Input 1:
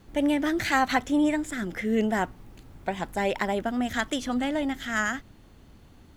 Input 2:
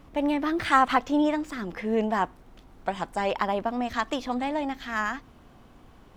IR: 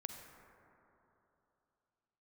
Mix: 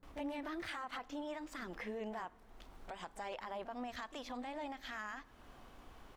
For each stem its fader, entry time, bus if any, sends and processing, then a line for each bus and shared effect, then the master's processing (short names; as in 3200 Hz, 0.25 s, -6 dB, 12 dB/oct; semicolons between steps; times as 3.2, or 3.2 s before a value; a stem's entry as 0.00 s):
-17.0 dB, 0.00 s, no send, Wiener smoothing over 15 samples; auto duck -12 dB, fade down 0.70 s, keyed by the second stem
-2.0 dB, 29 ms, send -15 dB, bell 150 Hz -9.5 dB 2.5 oct; compressor 2:1, threshold -45 dBFS, peak gain reduction 16 dB; limiter -33.5 dBFS, peak gain reduction 11 dB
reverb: on, RT60 3.1 s, pre-delay 38 ms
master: dry